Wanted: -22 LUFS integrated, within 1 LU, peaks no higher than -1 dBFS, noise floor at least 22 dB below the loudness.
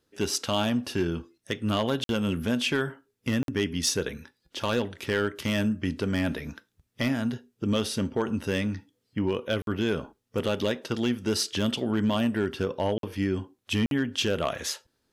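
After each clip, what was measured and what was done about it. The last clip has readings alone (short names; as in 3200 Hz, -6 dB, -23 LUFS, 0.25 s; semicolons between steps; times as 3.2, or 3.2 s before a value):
clipped 0.4%; flat tops at -17.0 dBFS; dropouts 5; longest dropout 52 ms; loudness -28.5 LUFS; peak -17.0 dBFS; loudness target -22.0 LUFS
-> clip repair -17 dBFS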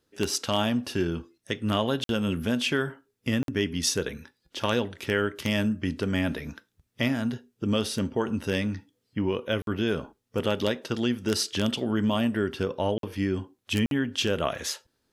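clipped 0.0%; dropouts 5; longest dropout 52 ms
-> interpolate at 2.04/3.43/9.62/12.98/13.86, 52 ms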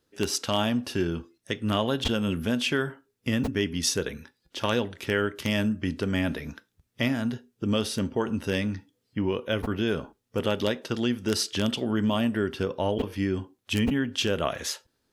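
dropouts 0; loudness -28.0 LUFS; peak -8.0 dBFS; loudness target -22.0 LUFS
-> gain +6 dB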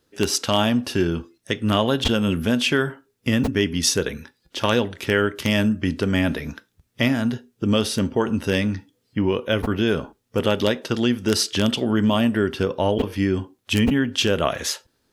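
loudness -22.0 LUFS; peak -2.0 dBFS; noise floor -70 dBFS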